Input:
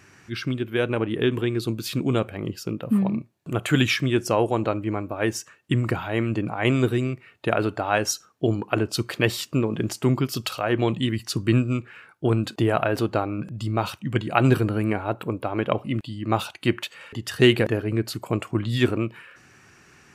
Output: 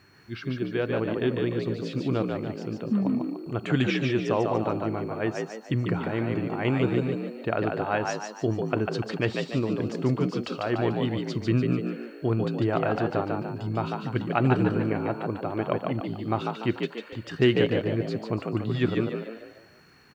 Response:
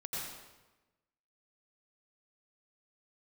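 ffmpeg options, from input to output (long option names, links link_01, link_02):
-filter_complex "[0:a]lowpass=frequency=7400:width=0.5412,lowpass=frequency=7400:width=1.3066,aeval=exprs='val(0)+0.00251*sin(2*PI*4300*n/s)':channel_layout=same,aemphasis=mode=reproduction:type=75fm,acrusher=bits=10:mix=0:aa=0.000001,asplit=6[link_01][link_02][link_03][link_04][link_05][link_06];[link_02]adelay=146,afreqshift=54,volume=-4dB[link_07];[link_03]adelay=292,afreqshift=108,volume=-11.5dB[link_08];[link_04]adelay=438,afreqshift=162,volume=-19.1dB[link_09];[link_05]adelay=584,afreqshift=216,volume=-26.6dB[link_10];[link_06]adelay=730,afreqshift=270,volume=-34.1dB[link_11];[link_01][link_07][link_08][link_09][link_10][link_11]amix=inputs=6:normalize=0,volume=-5dB"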